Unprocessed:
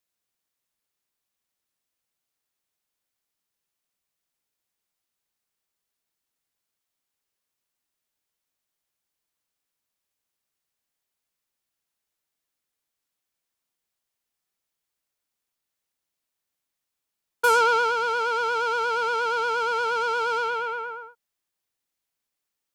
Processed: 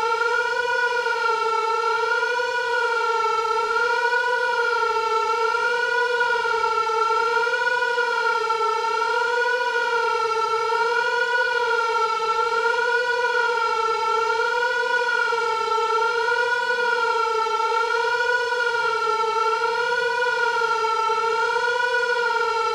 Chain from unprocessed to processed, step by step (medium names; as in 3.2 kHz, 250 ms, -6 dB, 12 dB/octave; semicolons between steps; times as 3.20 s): Chebyshev shaper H 7 -25 dB, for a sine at -10 dBFS; Paulstretch 15×, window 0.05 s, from 18.59 s; trim +5 dB